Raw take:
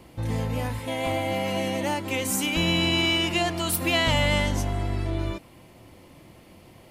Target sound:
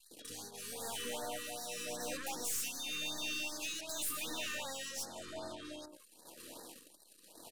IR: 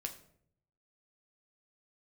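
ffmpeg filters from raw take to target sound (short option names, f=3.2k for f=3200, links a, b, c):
-filter_complex "[0:a]acompressor=threshold=-35dB:ratio=6,highpass=490,acrossover=split=620|2200[a][b][c];[a]adelay=100[d];[b]adelay=170[e];[d][e][c]amix=inputs=3:normalize=0,acrossover=split=4100[f][g];[f]tremolo=f=1:d=0.67[h];[g]acontrast=70[i];[h][i]amix=inputs=2:normalize=0,bandreject=f=2.3k:w=6.2,asetrate=40517,aresample=44100,aeval=exprs='(tanh(158*val(0)+0.5)-tanh(0.5))/158':c=same,anlmdn=0.000158,afftfilt=real='re*(1-between(b*sr/1024,700*pow(2700/700,0.5+0.5*sin(2*PI*2.6*pts/sr))/1.41,700*pow(2700/700,0.5+0.5*sin(2*PI*2.6*pts/sr))*1.41))':imag='im*(1-between(b*sr/1024,700*pow(2700/700,0.5+0.5*sin(2*PI*2.6*pts/sr))/1.41,700*pow(2700/700,0.5+0.5*sin(2*PI*2.6*pts/sr))*1.41))':win_size=1024:overlap=0.75,volume=8dB"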